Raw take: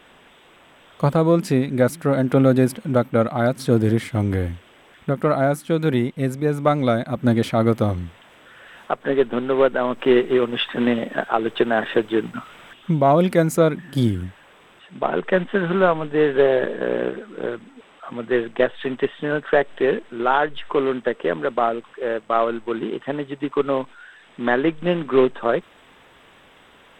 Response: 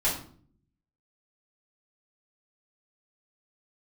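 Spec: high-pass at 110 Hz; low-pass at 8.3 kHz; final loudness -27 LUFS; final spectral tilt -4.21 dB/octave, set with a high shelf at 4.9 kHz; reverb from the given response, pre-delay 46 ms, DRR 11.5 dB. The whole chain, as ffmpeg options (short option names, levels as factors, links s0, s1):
-filter_complex "[0:a]highpass=110,lowpass=8300,highshelf=f=4900:g=-4,asplit=2[s0][s1];[1:a]atrim=start_sample=2205,adelay=46[s2];[s1][s2]afir=irnorm=-1:irlink=0,volume=0.0841[s3];[s0][s3]amix=inputs=2:normalize=0,volume=0.501"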